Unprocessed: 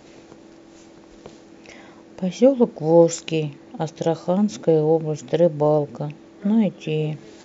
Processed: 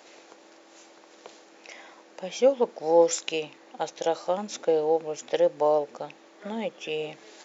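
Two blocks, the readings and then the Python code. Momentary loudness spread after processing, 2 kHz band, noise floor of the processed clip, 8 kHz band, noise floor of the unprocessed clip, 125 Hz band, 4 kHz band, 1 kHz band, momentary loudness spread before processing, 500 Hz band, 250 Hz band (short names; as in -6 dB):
19 LU, 0.0 dB, -54 dBFS, n/a, -47 dBFS, -22.5 dB, 0.0 dB, -1.0 dB, 13 LU, -5.0 dB, -14.5 dB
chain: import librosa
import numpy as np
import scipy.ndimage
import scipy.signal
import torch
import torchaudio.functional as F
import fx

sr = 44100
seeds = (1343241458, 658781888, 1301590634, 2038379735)

y = scipy.signal.sosfilt(scipy.signal.butter(2, 600.0, 'highpass', fs=sr, output='sos'), x)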